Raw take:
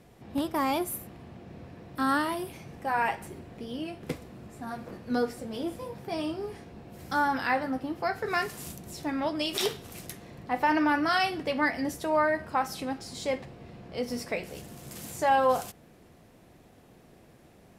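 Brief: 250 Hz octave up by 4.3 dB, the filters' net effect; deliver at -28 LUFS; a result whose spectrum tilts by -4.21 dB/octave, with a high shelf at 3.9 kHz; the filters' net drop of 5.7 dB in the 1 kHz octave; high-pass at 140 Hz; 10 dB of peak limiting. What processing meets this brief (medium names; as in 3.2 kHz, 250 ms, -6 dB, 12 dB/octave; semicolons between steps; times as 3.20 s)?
high-pass 140 Hz; peaking EQ 250 Hz +6 dB; peaking EQ 1 kHz -7.5 dB; treble shelf 3.9 kHz -7.5 dB; trim +7.5 dB; peak limiter -17.5 dBFS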